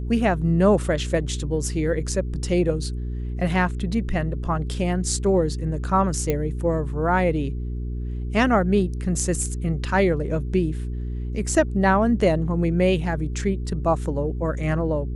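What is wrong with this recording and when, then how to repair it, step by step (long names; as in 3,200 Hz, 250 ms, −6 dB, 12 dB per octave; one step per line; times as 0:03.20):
mains hum 60 Hz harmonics 7 −28 dBFS
0:06.30: click −10 dBFS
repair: click removal
hum removal 60 Hz, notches 7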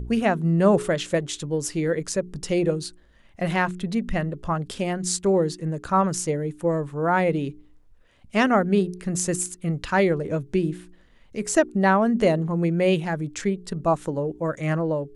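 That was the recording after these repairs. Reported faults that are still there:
none of them is left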